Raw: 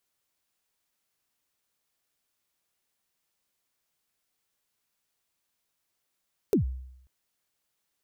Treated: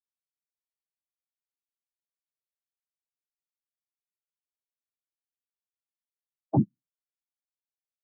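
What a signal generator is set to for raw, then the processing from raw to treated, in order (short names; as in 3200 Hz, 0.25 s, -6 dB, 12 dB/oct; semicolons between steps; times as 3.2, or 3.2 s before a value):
kick drum length 0.54 s, from 470 Hz, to 64 Hz, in 0.115 s, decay 0.78 s, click on, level -17 dB
bell 690 Hz -12 dB 0.37 oct; noise vocoder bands 4; spectral expander 2.5:1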